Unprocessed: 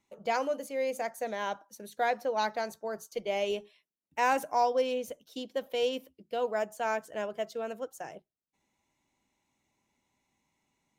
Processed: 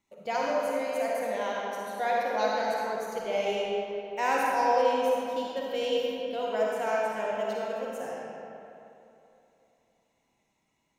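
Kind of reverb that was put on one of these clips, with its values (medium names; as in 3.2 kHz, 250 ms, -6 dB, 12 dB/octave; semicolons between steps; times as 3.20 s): algorithmic reverb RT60 2.9 s, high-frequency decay 0.65×, pre-delay 15 ms, DRR -4.5 dB; trim -2.5 dB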